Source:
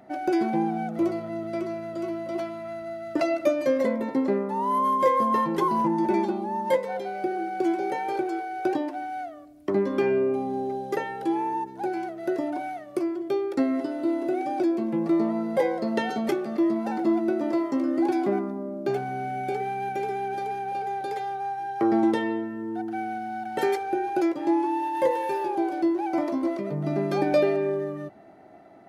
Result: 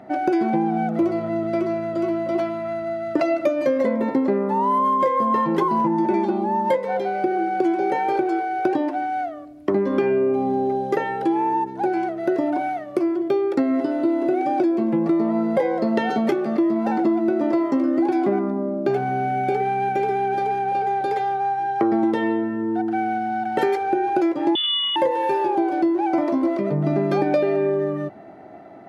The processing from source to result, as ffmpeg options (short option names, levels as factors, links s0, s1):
-filter_complex "[0:a]asettb=1/sr,asplit=3[s0][s1][s2];[s0]atrim=end=24.554[s3];[s1]atrim=start=24.55:end=24.96,asetpts=PTS-STARTPTS,afade=t=in:d=0.004:c=qsin,afade=t=out:st=0.406:d=0.004:c=qsin,lowpass=f=3200:t=q:w=0.5098,lowpass=f=3200:t=q:w=0.6013,lowpass=f=3200:t=q:w=0.9,lowpass=f=3200:t=q:w=2.563,afreqshift=-3800[s4];[s2]atrim=start=24.956[s5];[s3][s4]acrossfade=d=0.004:c1=hsin:c2=qsin[s6];[s6][s5]acrossfade=d=0.004:c1=qsin:c2=hsin,highpass=57,highshelf=f=4900:g=-12,acompressor=threshold=0.0562:ratio=6,volume=2.66"